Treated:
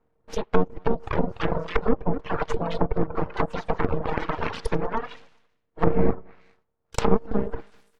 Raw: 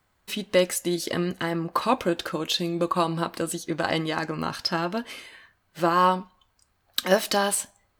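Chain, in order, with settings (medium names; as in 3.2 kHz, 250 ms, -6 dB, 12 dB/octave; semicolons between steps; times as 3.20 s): ever faster or slower copies 352 ms, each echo +1 st, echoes 3, each echo -6 dB; level-controlled noise filter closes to 510 Hz, open at -21 dBFS; ring modulator 230 Hz; full-wave rectifier; feedback delay 203 ms, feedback 28%, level -21.5 dB; reverb removal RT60 1.5 s; low-pass that closes with the level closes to 460 Hz, closed at -24.5 dBFS; dynamic bell 1.1 kHz, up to +4 dB, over -50 dBFS, Q 1.5; trim +8.5 dB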